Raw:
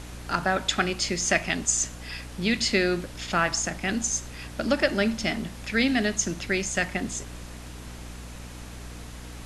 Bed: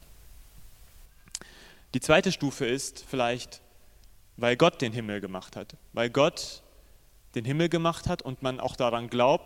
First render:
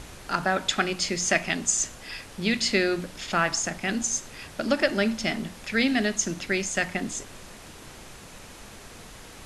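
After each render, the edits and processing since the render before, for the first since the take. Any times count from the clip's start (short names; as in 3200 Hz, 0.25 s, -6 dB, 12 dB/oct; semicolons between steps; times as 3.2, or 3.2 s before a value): de-hum 60 Hz, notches 5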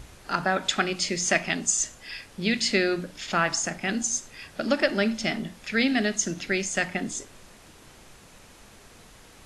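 noise print and reduce 6 dB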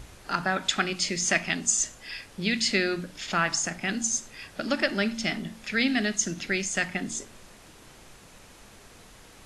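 de-hum 74.54 Hz, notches 3; dynamic EQ 530 Hz, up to -5 dB, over -38 dBFS, Q 0.93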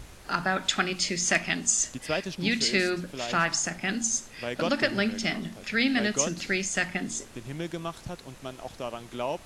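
add bed -9 dB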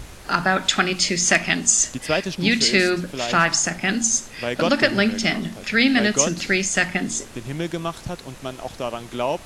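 gain +7.5 dB; limiter -3 dBFS, peak gain reduction 2.5 dB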